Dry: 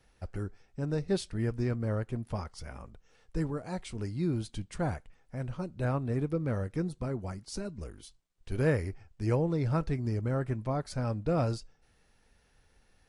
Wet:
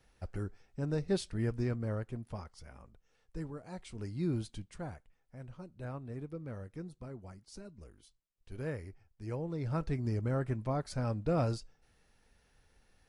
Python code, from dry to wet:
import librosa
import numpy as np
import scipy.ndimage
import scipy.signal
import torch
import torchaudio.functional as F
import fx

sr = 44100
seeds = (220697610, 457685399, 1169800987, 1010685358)

y = fx.gain(x, sr, db=fx.line((1.55, -2.0), (2.63, -9.0), (3.67, -9.0), (4.35, -2.0), (4.9, -11.5), (9.27, -11.5), (9.98, -2.0)))